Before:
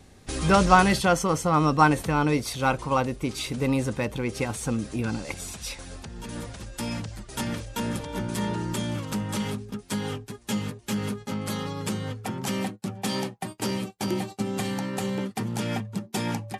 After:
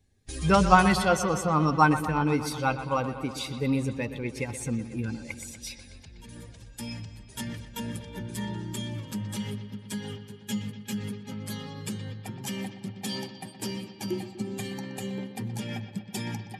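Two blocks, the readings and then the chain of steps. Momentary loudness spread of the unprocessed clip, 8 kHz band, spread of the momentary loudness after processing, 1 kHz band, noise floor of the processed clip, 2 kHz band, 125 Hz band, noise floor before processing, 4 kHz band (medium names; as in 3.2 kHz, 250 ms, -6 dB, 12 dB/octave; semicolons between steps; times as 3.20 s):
13 LU, -4.0 dB, 17 LU, -2.0 dB, -49 dBFS, -2.0 dB, -2.5 dB, -52 dBFS, -3.5 dB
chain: expander on every frequency bin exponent 1.5; on a send: bucket-brigade echo 122 ms, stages 4096, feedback 73%, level -12.5 dB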